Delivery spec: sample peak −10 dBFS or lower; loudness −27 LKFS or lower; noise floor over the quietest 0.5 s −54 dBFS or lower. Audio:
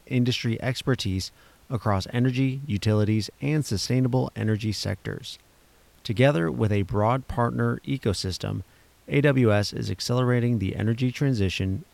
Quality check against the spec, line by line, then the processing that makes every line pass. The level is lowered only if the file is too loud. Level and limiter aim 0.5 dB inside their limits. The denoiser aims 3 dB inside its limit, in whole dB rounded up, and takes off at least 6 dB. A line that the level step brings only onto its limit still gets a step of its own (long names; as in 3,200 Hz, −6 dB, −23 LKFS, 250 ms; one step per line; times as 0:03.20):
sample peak −7.0 dBFS: out of spec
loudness −25.0 LKFS: out of spec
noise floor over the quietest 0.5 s −57 dBFS: in spec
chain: level −2.5 dB
brickwall limiter −10.5 dBFS